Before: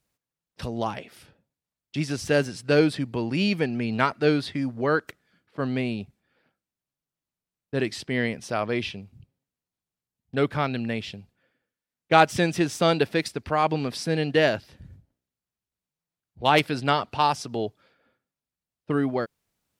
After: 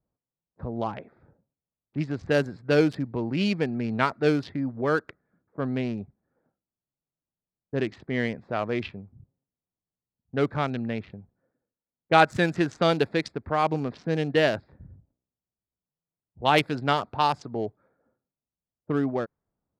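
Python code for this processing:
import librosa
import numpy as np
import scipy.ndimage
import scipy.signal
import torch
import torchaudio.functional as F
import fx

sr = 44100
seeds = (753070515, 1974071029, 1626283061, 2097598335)

y = fx.peak_eq(x, sr, hz=1500.0, db=6.0, octaves=0.55, at=(12.22, 12.84))
y = fx.wiener(y, sr, points=15)
y = fx.env_lowpass(y, sr, base_hz=1000.0, full_db=-18.0)
y = y * librosa.db_to_amplitude(-1.0)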